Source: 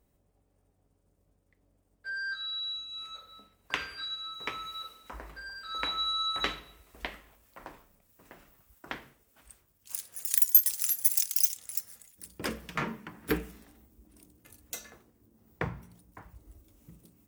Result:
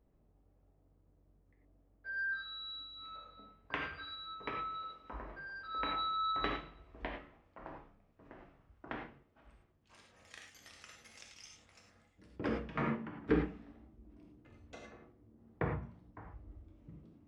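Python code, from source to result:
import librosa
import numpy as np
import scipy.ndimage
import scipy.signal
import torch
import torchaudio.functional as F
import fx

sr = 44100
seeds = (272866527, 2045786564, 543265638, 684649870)

y = fx.spacing_loss(x, sr, db_at_10k=42)
y = fx.rev_gated(y, sr, seeds[0], gate_ms=130, shape='flat', drr_db=0.5)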